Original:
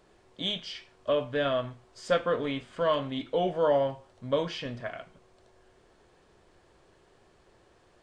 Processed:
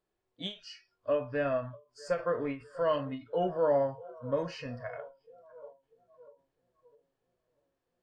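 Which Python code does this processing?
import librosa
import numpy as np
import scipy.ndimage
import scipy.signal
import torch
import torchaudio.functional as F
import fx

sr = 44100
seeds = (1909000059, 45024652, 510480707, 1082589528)

p1 = x + fx.echo_filtered(x, sr, ms=647, feedback_pct=72, hz=1800.0, wet_db=-18.5, dry=0)
p2 = fx.noise_reduce_blind(p1, sr, reduce_db=20)
p3 = fx.hpss(p2, sr, part='percussive', gain_db=-5)
p4 = fx.end_taper(p3, sr, db_per_s=190.0)
y = p4 * librosa.db_to_amplitude(-1.5)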